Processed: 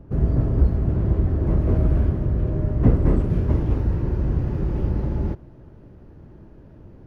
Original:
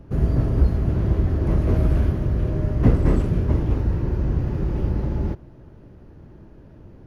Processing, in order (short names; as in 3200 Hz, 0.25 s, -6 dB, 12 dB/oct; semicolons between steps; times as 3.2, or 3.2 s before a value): high shelf 2000 Hz -11 dB, from 3.3 s -4 dB